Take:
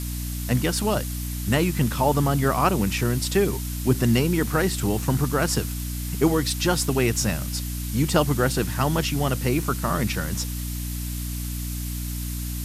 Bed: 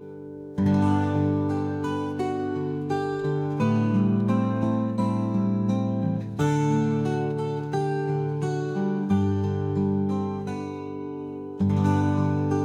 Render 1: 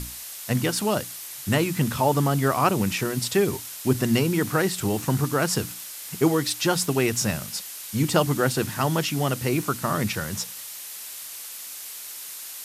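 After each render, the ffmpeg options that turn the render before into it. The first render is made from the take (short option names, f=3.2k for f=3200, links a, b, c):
-af "bandreject=f=60:t=h:w=6,bandreject=f=120:t=h:w=6,bandreject=f=180:t=h:w=6,bandreject=f=240:t=h:w=6,bandreject=f=300:t=h:w=6"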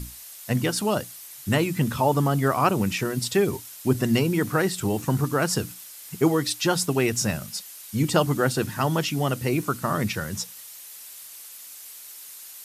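-af "afftdn=nr=7:nf=-38"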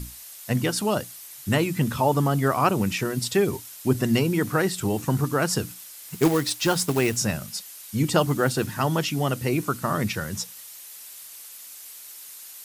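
-filter_complex "[0:a]asettb=1/sr,asplit=3[a][b][c];[a]atrim=end=6.084[d];[b]atrim=start=6.08:end=7.17,asetpts=PTS-STARTPTS,afade=t=in:d=0.004:c=qsin,afade=t=out:st=1.086:d=0.004:c=qsin,acrusher=bits=3:mode=log:mix=0:aa=0.000001[e];[c]atrim=start=7.166[f];[d][e]acrossfade=d=0.004:c1=hsin:c2=qsin[g];[g][f]acrossfade=d=0.004:c1=qsin:c2=hsin,asettb=1/sr,asplit=3[h][i][j];[h]atrim=end=8.184[k];[i]atrim=start=8.18:end=8.71,asetpts=PTS-STARTPTS,afade=t=in:d=0.004:c=qsin,afade=t=out:st=0.526:d=0.004:c=qsin,acrusher=bits=8:mode=log:mix=0:aa=0.000001[l];[j]atrim=start=8.706[m];[k][l]acrossfade=d=0.004:c1=hsin:c2=qsin[n];[n][m]acrossfade=d=0.004:c1=qsin:c2=hsin"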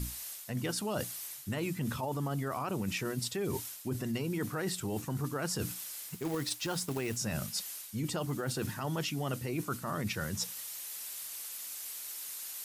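-af "alimiter=limit=-16.5dB:level=0:latency=1:release=25,areverse,acompressor=threshold=-32dB:ratio=6,areverse"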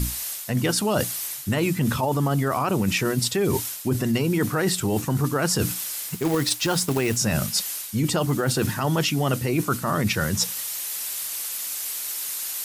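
-af "volume=12dB"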